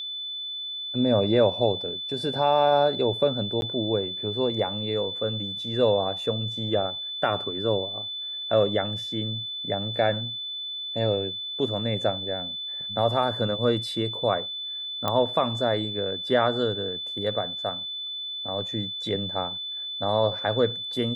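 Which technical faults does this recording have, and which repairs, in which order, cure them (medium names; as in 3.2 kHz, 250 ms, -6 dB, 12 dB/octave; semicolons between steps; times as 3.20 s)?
whine 3.5 kHz -31 dBFS
3.61–3.62 s: dropout 11 ms
15.08 s: pop -12 dBFS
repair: de-click; band-stop 3.5 kHz, Q 30; interpolate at 3.61 s, 11 ms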